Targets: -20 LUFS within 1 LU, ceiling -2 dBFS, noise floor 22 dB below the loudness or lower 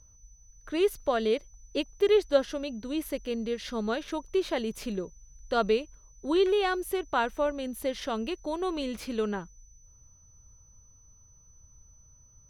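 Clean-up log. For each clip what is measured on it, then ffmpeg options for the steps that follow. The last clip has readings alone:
steady tone 6000 Hz; tone level -58 dBFS; loudness -29.5 LUFS; peak -11.0 dBFS; loudness target -20.0 LUFS
-> -af "bandreject=f=6k:w=30"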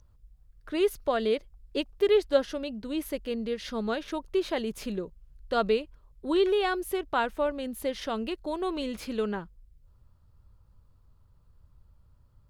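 steady tone none; loudness -30.0 LUFS; peak -11.0 dBFS; loudness target -20.0 LUFS
-> -af "volume=10dB,alimiter=limit=-2dB:level=0:latency=1"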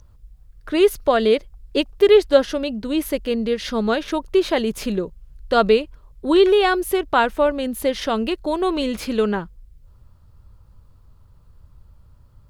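loudness -20.0 LUFS; peak -2.0 dBFS; noise floor -50 dBFS

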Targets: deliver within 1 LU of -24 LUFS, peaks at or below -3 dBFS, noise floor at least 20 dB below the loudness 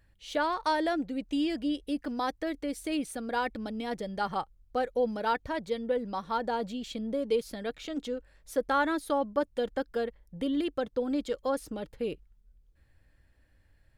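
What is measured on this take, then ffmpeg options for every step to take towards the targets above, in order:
loudness -32.0 LUFS; peak -15.5 dBFS; loudness target -24.0 LUFS
-> -af "volume=8dB"

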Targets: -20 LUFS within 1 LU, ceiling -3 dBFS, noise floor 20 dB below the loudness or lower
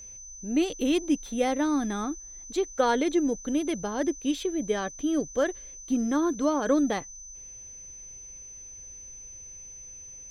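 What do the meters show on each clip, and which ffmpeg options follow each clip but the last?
steady tone 6100 Hz; tone level -42 dBFS; loudness -27.5 LUFS; peak -11.5 dBFS; loudness target -20.0 LUFS
-> -af "bandreject=f=6.1k:w=30"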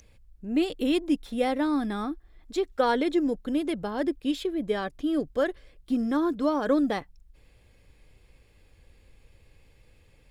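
steady tone none; loudness -27.5 LUFS; peak -11.5 dBFS; loudness target -20.0 LUFS
-> -af "volume=7.5dB"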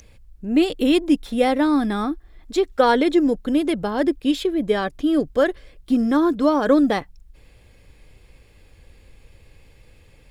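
loudness -20.0 LUFS; peak -4.0 dBFS; noise floor -52 dBFS

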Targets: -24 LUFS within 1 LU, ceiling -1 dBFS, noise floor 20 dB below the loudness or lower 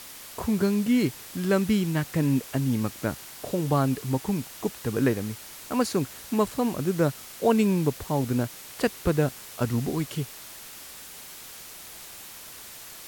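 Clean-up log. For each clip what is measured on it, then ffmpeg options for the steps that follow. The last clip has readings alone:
noise floor -44 dBFS; noise floor target -47 dBFS; loudness -27.0 LUFS; peak -8.0 dBFS; loudness target -24.0 LUFS
-> -af "afftdn=nr=6:nf=-44"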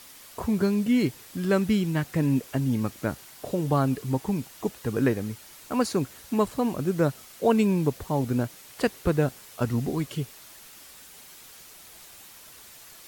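noise floor -49 dBFS; loudness -27.0 LUFS; peak -8.5 dBFS; loudness target -24.0 LUFS
-> -af "volume=3dB"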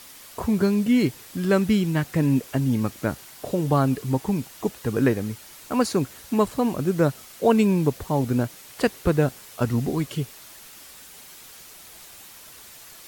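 loudness -24.0 LUFS; peak -5.5 dBFS; noise floor -46 dBFS

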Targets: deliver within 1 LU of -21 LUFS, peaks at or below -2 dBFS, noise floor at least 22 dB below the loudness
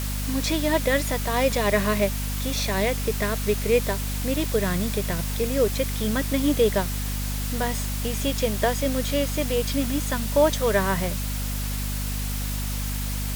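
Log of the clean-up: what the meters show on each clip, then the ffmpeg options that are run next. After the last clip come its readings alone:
hum 50 Hz; harmonics up to 250 Hz; hum level -26 dBFS; noise floor -28 dBFS; noise floor target -47 dBFS; loudness -24.5 LUFS; peak -7.5 dBFS; loudness target -21.0 LUFS
-> -af "bandreject=f=50:t=h:w=6,bandreject=f=100:t=h:w=6,bandreject=f=150:t=h:w=6,bandreject=f=200:t=h:w=6,bandreject=f=250:t=h:w=6"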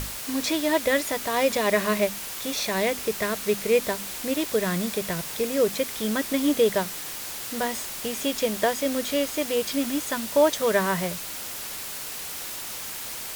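hum none; noise floor -35 dBFS; noise floor target -48 dBFS
-> -af "afftdn=nr=13:nf=-35"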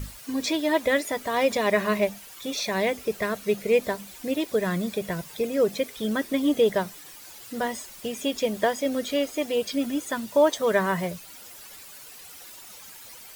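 noise floor -45 dBFS; noise floor target -48 dBFS
-> -af "afftdn=nr=6:nf=-45"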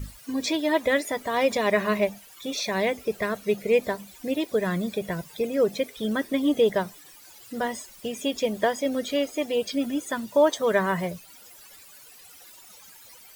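noise floor -50 dBFS; loudness -26.0 LUFS; peak -9.5 dBFS; loudness target -21.0 LUFS
-> -af "volume=5dB"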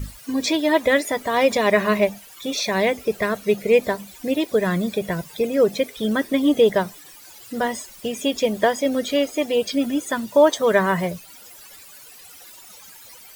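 loudness -21.0 LUFS; peak -4.5 dBFS; noise floor -45 dBFS

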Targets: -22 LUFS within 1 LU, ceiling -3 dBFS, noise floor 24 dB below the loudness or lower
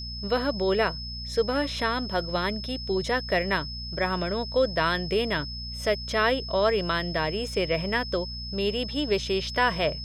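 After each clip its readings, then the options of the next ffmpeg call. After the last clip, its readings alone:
hum 60 Hz; harmonics up to 240 Hz; hum level -36 dBFS; steady tone 5200 Hz; tone level -36 dBFS; loudness -26.5 LUFS; peak -9.5 dBFS; loudness target -22.0 LUFS
-> -af "bandreject=f=60:t=h:w=4,bandreject=f=120:t=h:w=4,bandreject=f=180:t=h:w=4,bandreject=f=240:t=h:w=4"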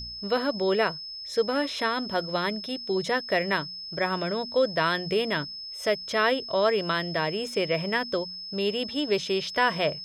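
hum none; steady tone 5200 Hz; tone level -36 dBFS
-> -af "bandreject=f=5.2k:w=30"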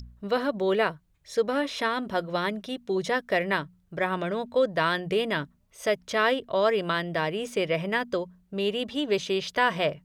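steady tone none; loudness -27.5 LUFS; peak -9.5 dBFS; loudness target -22.0 LUFS
-> -af "volume=5.5dB"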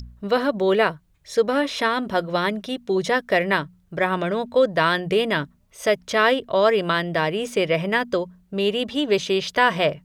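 loudness -22.0 LUFS; peak -4.0 dBFS; noise floor -60 dBFS

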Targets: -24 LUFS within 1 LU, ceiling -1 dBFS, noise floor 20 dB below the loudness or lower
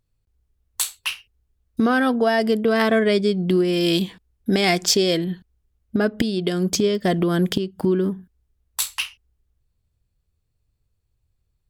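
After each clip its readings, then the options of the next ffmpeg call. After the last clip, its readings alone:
loudness -21.0 LUFS; peak -4.0 dBFS; loudness target -24.0 LUFS
-> -af "volume=-3dB"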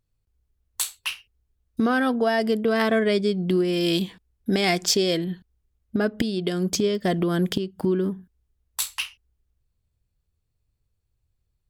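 loudness -24.0 LUFS; peak -7.0 dBFS; noise floor -75 dBFS

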